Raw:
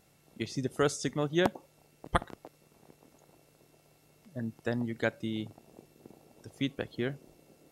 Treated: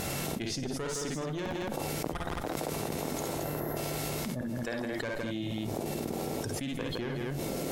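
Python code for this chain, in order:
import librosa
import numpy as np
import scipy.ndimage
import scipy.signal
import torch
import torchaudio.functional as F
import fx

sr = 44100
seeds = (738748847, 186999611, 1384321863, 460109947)

p1 = fx.spec_box(x, sr, start_s=3.39, length_s=0.38, low_hz=2100.0, high_hz=11000.0, gain_db=-16)
p2 = fx.highpass(p1, sr, hz=560.0, slope=6, at=(4.41, 4.98))
p3 = fx.tube_stage(p2, sr, drive_db=26.0, bias=0.55)
p4 = p3 + fx.echo_multitap(p3, sr, ms=(52, 64, 163, 219), db=(-5.5, -8.0, -11.5, -8.5), dry=0)
p5 = fx.env_flatten(p4, sr, amount_pct=100)
y = p5 * 10.0 ** (-7.0 / 20.0)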